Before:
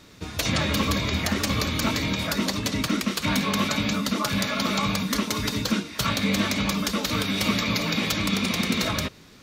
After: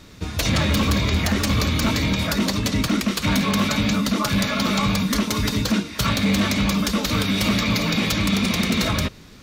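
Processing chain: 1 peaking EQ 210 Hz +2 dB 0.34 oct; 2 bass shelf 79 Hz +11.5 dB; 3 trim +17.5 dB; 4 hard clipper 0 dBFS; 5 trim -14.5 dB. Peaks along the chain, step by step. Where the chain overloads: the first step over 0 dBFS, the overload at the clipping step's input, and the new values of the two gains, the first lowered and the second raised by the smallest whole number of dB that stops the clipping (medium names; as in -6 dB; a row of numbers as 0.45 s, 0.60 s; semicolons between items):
-10.0 dBFS, -9.0 dBFS, +8.5 dBFS, 0.0 dBFS, -14.5 dBFS; step 3, 8.5 dB; step 3 +8.5 dB, step 5 -5.5 dB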